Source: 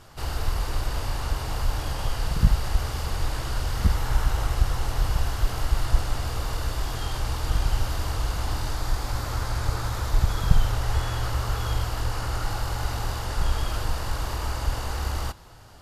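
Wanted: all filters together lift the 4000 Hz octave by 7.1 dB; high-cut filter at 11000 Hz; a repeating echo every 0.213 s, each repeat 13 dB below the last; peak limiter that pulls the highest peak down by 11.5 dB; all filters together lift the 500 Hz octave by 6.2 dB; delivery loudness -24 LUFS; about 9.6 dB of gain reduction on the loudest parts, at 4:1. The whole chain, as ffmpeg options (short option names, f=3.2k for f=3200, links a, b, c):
-af "lowpass=11k,equalizer=f=500:t=o:g=7.5,equalizer=f=4k:t=o:g=9,acompressor=threshold=-22dB:ratio=4,alimiter=limit=-23dB:level=0:latency=1,aecho=1:1:213|426|639:0.224|0.0493|0.0108,volume=9dB"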